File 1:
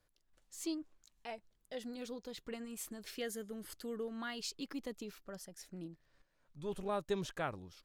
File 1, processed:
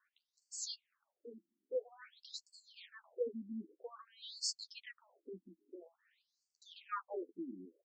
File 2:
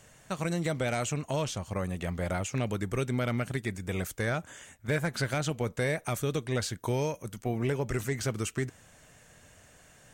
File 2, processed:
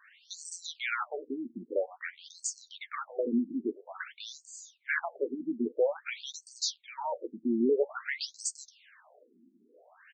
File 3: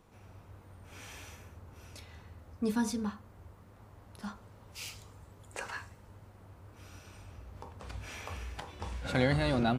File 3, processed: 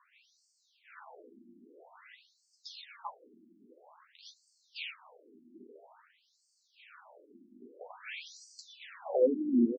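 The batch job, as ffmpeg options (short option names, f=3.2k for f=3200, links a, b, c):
-filter_complex "[0:a]asplit=2[a][b];[b]adelay=12,volume=-7.5dB[c];[a][c]amix=inputs=2:normalize=0,afftfilt=real='re*between(b*sr/1024,250*pow(6200/250,0.5+0.5*sin(2*PI*0.5*pts/sr))/1.41,250*pow(6200/250,0.5+0.5*sin(2*PI*0.5*pts/sr))*1.41)':imag='im*between(b*sr/1024,250*pow(6200/250,0.5+0.5*sin(2*PI*0.5*pts/sr))/1.41,250*pow(6200/250,0.5+0.5*sin(2*PI*0.5*pts/sr))*1.41)':win_size=1024:overlap=0.75,volume=5.5dB"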